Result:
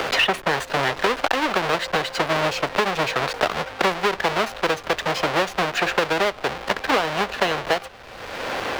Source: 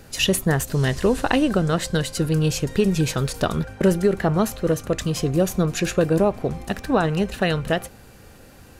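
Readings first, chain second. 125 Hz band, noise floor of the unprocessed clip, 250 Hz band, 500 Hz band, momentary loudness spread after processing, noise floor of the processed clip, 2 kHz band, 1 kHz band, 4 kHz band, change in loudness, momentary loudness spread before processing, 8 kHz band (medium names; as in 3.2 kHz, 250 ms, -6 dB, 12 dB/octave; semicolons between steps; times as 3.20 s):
-13.0 dB, -46 dBFS, -9.0 dB, -1.5 dB, 5 LU, -40 dBFS, +7.5 dB, +7.0 dB, +4.5 dB, -0.5 dB, 5 LU, -5.5 dB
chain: square wave that keeps the level; three-band isolator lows -20 dB, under 450 Hz, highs -18 dB, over 4.7 kHz; three bands compressed up and down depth 100%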